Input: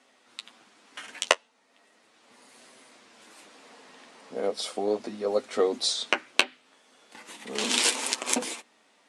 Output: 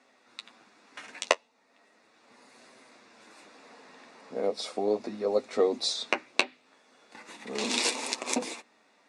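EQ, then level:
high-frequency loss of the air 60 metres
notch filter 3,100 Hz, Q 5.6
dynamic equaliser 1,500 Hz, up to −7 dB, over −48 dBFS, Q 2.5
0.0 dB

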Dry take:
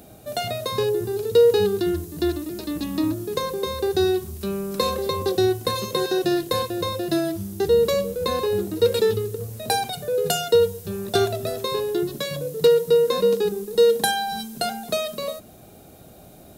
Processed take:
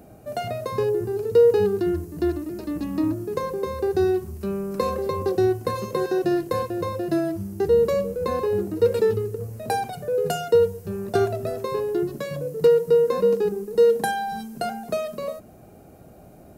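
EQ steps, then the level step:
high-shelf EQ 2,800 Hz −10 dB
parametric band 3,600 Hz −10.5 dB 0.38 octaves
0.0 dB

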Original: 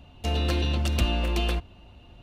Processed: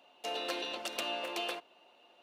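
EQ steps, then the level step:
four-pole ladder high-pass 370 Hz, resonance 20%
0.0 dB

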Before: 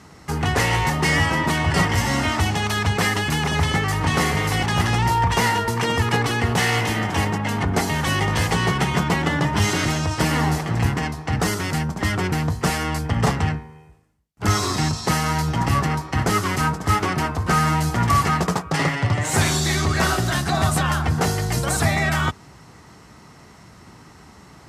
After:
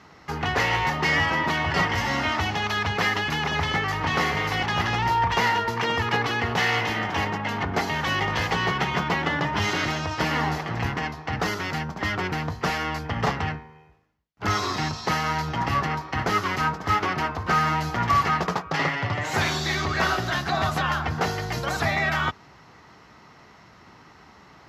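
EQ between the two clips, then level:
moving average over 5 samples
low-shelf EQ 370 Hz −9.5 dB
0.0 dB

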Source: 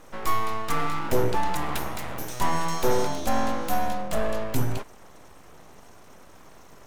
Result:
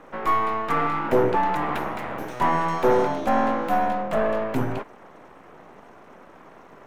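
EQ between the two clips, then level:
three-way crossover with the lows and the highs turned down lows −13 dB, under 160 Hz, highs −19 dB, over 2,600 Hz
+5.5 dB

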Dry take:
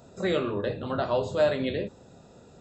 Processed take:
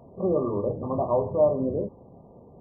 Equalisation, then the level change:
linear-phase brick-wall low-pass 1,200 Hz
+2.5 dB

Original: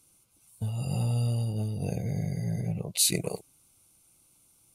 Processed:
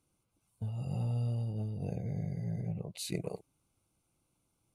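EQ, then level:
high-shelf EQ 2,400 Hz −10.5 dB
high-shelf EQ 8,600 Hz −7.5 dB
−5.5 dB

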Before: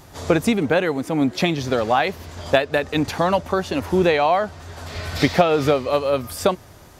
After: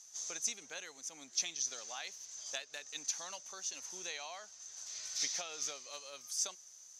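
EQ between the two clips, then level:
resonant band-pass 6,200 Hz, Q 12
+9.0 dB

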